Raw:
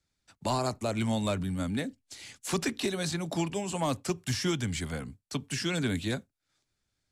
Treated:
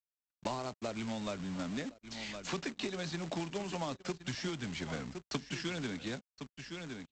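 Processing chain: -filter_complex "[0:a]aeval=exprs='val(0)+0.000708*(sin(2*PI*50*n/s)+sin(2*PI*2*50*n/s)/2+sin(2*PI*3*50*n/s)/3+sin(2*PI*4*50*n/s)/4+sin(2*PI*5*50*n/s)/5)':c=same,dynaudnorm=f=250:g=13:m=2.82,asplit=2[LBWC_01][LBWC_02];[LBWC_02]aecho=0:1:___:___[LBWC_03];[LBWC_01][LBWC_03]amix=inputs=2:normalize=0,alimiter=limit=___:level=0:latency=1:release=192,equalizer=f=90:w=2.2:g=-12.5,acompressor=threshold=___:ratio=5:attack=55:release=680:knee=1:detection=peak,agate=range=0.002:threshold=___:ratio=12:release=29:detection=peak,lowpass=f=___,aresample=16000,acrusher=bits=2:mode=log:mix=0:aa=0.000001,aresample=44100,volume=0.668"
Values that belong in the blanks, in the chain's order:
1063, 0.158, 0.2, 0.02, 0.00251, 4400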